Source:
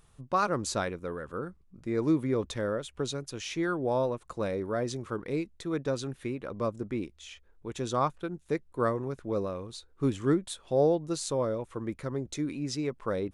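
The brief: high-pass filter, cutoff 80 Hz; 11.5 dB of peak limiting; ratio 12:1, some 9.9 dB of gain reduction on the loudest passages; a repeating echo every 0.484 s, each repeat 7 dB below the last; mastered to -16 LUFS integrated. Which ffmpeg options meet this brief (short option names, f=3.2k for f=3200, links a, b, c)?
-af "highpass=80,acompressor=threshold=-30dB:ratio=12,alimiter=level_in=6dB:limit=-24dB:level=0:latency=1,volume=-6dB,aecho=1:1:484|968|1452|1936|2420:0.447|0.201|0.0905|0.0407|0.0183,volume=23.5dB"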